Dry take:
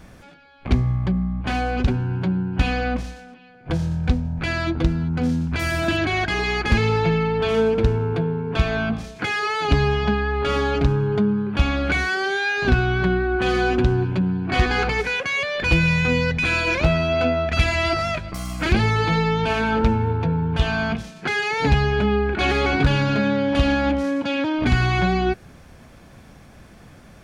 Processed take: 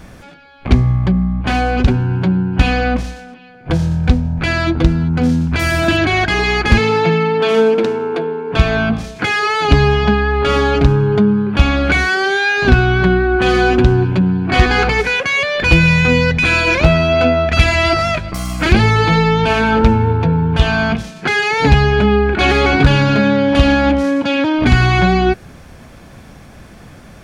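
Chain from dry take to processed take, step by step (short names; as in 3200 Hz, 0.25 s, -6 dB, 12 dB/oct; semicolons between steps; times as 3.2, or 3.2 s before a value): 6.78–8.52 HPF 140 Hz -> 300 Hz 24 dB/oct; gain +7.5 dB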